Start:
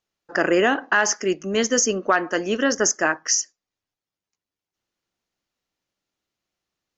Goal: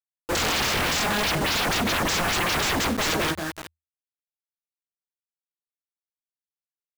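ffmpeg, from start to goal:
-filter_complex "[0:a]flanger=delay=18:depth=2.5:speed=2.2,afftfilt=real='re*gte(hypot(re,im),0.00794)':imag='im*gte(hypot(re,im),0.00794)':win_size=1024:overlap=0.75,aecho=1:1:181|362|543:0.237|0.0593|0.0148,acrossover=split=200[a][b];[b]acompressor=threshold=-29dB:ratio=12[c];[a][c]amix=inputs=2:normalize=0,asuperstop=centerf=4800:order=20:qfactor=0.51,lowshelf=f=320:g=12,aresample=16000,aeval=exprs='0.106*sin(PI/2*8.91*val(0)/0.106)':c=same,aresample=44100,acrusher=bits=4:mix=0:aa=0.000001,equalizer=f=81:w=5.5:g=9,volume=-2dB"

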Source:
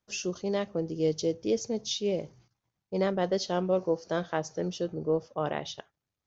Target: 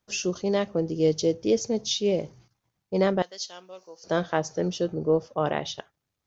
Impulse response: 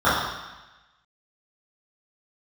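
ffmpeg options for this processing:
-filter_complex "[0:a]asettb=1/sr,asplit=3[a][b][c];[a]atrim=end=3.224[d];[b]atrim=start=3.22:end=4.04,asetpts=PTS-STARTPTS,afade=t=in:d=0.004:c=qsin,afade=t=out:st=0.816:d=0.004:c=qsin,aderivative[e];[c]atrim=start=4.036[f];[d][e]acrossfade=d=0.004:c1=hsin:c2=qsin[g];[g][f]acrossfade=d=0.004:c1=qsin:c2=hsin,volume=5dB"

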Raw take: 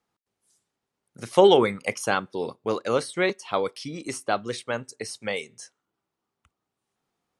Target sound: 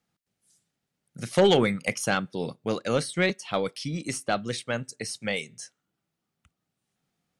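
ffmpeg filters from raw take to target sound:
-af "equalizer=f=160:t=o:w=0.67:g=7,equalizer=f=400:t=o:w=0.67:g=-6,equalizer=f=1k:t=o:w=0.67:g=-9,aeval=exprs='0.562*sin(PI/2*1.78*val(0)/0.562)':c=same,aeval=exprs='0.562*(cos(1*acos(clip(val(0)/0.562,-1,1)))-cos(1*PI/2))+0.0501*(cos(2*acos(clip(val(0)/0.562,-1,1)))-cos(2*PI/2))':c=same,volume=-7dB"

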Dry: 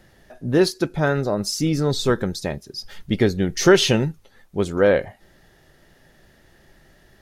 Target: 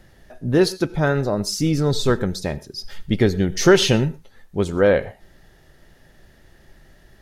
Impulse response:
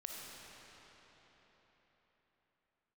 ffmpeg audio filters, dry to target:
-filter_complex "[0:a]lowshelf=f=84:g=7.5,asplit=2[a][b];[1:a]atrim=start_sample=2205,atrim=end_sample=3969,asetrate=30429,aresample=44100[c];[b][c]afir=irnorm=-1:irlink=0,volume=-7.5dB[d];[a][d]amix=inputs=2:normalize=0,volume=-2dB"

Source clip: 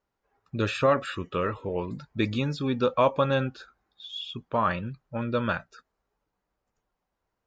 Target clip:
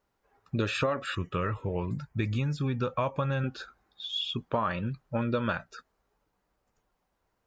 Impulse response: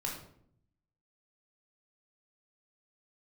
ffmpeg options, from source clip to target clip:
-filter_complex "[0:a]asettb=1/sr,asplit=3[a][b][c];[a]atrim=end=1.154[d];[b]atrim=start=1.15:end=3.44,asetpts=PTS-STARTPTS,afade=t=in:d=0.004:c=qsin,afade=t=out:st=2.286:d=0.004:c=qsin,equalizer=f=125:t=o:w=1:g=4,equalizer=f=250:t=o:w=1:g=-6,equalizer=f=500:t=o:w=1:g=-6,equalizer=f=1k:t=o:w=1:g=-4,equalizer=f=4k:t=o:w=1:g=-10[e];[c]atrim=start=3.436[f];[d][e]acrossfade=d=0.004:c1=hsin:c2=qsin[g];[g][f]acrossfade=d=0.004:c1=qsin:c2=hsin,acompressor=threshold=-30dB:ratio=6,volume=4.5dB"

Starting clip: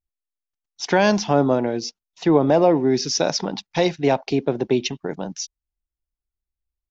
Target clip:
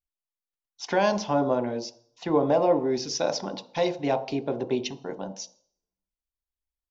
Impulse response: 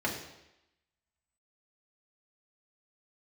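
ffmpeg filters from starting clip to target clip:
-filter_complex "[0:a]asplit=2[a][b];[b]equalizer=f=500:t=o:w=1:g=6,equalizer=f=1k:t=o:w=1:g=9,equalizer=f=2k:t=o:w=1:g=-6[c];[1:a]atrim=start_sample=2205,asetrate=70560,aresample=44100[d];[c][d]afir=irnorm=-1:irlink=0,volume=-13.5dB[e];[a][e]amix=inputs=2:normalize=0,volume=-8.5dB"

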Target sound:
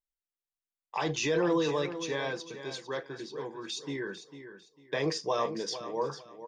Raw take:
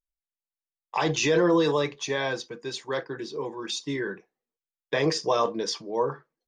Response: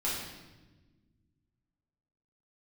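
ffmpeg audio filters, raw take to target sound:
-af "aecho=1:1:449|898|1347:0.266|0.0718|0.0194,volume=-6dB"

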